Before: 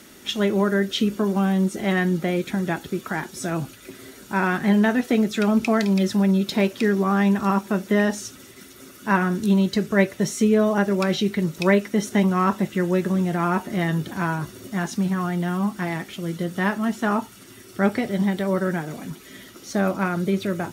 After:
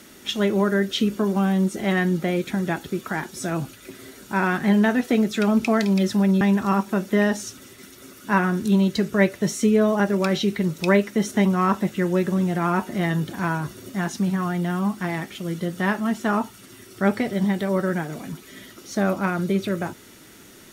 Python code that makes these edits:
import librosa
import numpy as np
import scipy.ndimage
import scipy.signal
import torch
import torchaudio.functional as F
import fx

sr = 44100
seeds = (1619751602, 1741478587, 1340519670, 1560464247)

y = fx.edit(x, sr, fx.cut(start_s=6.41, length_s=0.78), tone=tone)